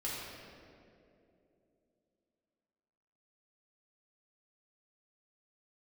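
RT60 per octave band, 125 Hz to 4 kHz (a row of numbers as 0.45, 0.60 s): 3.0, 3.6, 3.4, 2.3, 1.9, 1.4 s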